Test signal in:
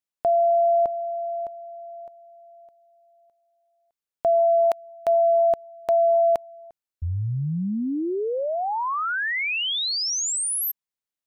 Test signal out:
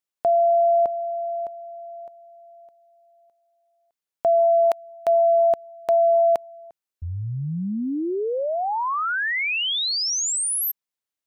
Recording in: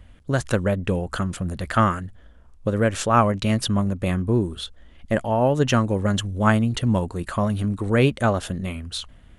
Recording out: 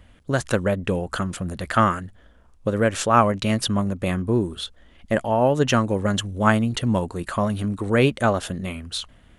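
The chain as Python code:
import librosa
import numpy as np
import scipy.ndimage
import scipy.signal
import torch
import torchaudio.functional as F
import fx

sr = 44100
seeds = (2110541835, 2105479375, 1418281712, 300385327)

y = fx.low_shelf(x, sr, hz=130.0, db=-7.0)
y = y * 10.0 ** (1.5 / 20.0)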